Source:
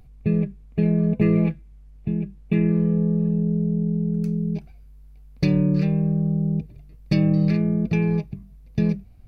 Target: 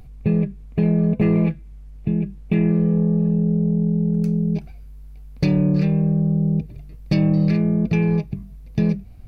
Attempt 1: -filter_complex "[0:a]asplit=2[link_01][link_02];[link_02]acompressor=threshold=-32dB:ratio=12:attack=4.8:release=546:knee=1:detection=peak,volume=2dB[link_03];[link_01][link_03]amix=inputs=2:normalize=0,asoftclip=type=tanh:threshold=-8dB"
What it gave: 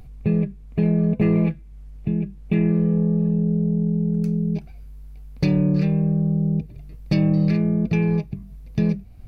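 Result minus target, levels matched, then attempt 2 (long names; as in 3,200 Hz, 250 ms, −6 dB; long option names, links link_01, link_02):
downward compressor: peak gain reduction +7 dB
-filter_complex "[0:a]asplit=2[link_01][link_02];[link_02]acompressor=threshold=-24.5dB:ratio=12:attack=4.8:release=546:knee=1:detection=peak,volume=2dB[link_03];[link_01][link_03]amix=inputs=2:normalize=0,asoftclip=type=tanh:threshold=-8dB"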